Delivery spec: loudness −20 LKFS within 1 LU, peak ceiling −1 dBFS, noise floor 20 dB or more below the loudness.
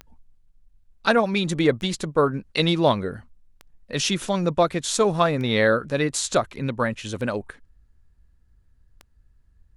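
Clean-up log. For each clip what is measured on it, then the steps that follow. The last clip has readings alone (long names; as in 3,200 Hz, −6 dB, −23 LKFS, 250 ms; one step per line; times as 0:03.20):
number of clicks 6; integrated loudness −23.0 LKFS; sample peak −5.5 dBFS; target loudness −20.0 LKFS
→ click removal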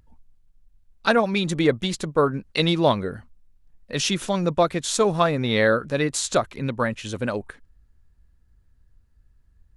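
number of clicks 0; integrated loudness −23.0 LKFS; sample peak −5.5 dBFS; target loudness −20.0 LKFS
→ level +3 dB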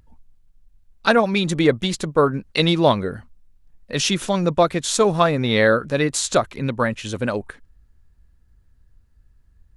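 integrated loudness −20.0 LKFS; sample peak −2.5 dBFS; background noise floor −57 dBFS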